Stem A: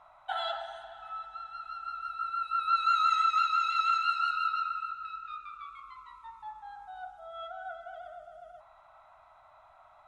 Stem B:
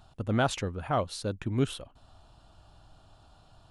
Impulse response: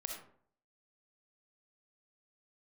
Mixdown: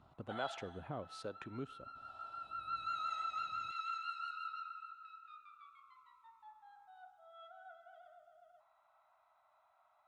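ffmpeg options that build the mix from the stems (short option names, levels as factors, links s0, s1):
-filter_complex "[0:a]volume=0.2[s0];[1:a]lowpass=f=1500:p=1,acompressor=threshold=0.0112:ratio=3,acrossover=split=420[s1][s2];[s1]aeval=exprs='val(0)*(1-0.7/2+0.7/2*cos(2*PI*1.1*n/s))':c=same[s3];[s2]aeval=exprs='val(0)*(1-0.7/2-0.7/2*cos(2*PI*1.1*n/s))':c=same[s4];[s3][s4]amix=inputs=2:normalize=0,volume=1.33,asplit=2[s5][s6];[s6]volume=0.075[s7];[2:a]atrim=start_sample=2205[s8];[s7][s8]afir=irnorm=-1:irlink=0[s9];[s0][s5][s9]amix=inputs=3:normalize=0,highpass=f=330:p=1"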